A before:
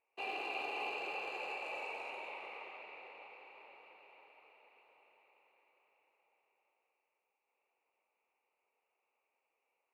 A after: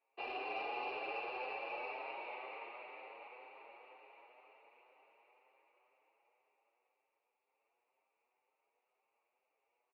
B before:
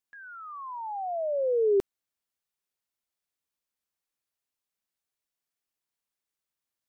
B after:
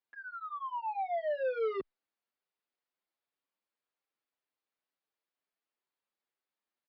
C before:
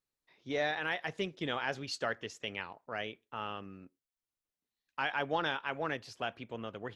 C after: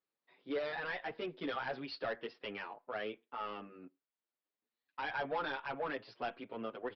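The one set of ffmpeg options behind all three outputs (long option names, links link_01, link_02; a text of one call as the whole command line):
ffmpeg -i in.wav -filter_complex "[0:a]highpass=250,aresample=11025,asoftclip=type=tanh:threshold=-33.5dB,aresample=44100,lowpass=frequency=1900:poles=1,asplit=2[link_01][link_02];[link_02]adelay=7.3,afreqshift=2[link_03];[link_01][link_03]amix=inputs=2:normalize=1,volume=5.5dB" out.wav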